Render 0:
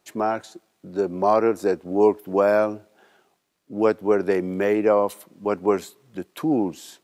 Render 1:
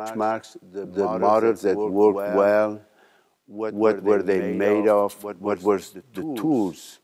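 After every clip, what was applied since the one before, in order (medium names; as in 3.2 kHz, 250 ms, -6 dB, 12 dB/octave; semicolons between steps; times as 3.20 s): reverse echo 218 ms -9 dB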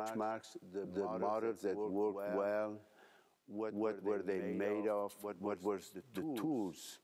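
compression 2.5:1, threshold -32 dBFS, peak gain reduction 13.5 dB; trim -7.5 dB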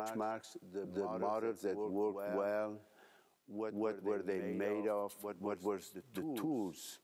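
treble shelf 9.1 kHz +5.5 dB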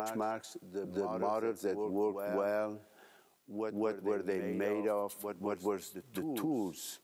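treble shelf 7 kHz +4.5 dB; trim +3.5 dB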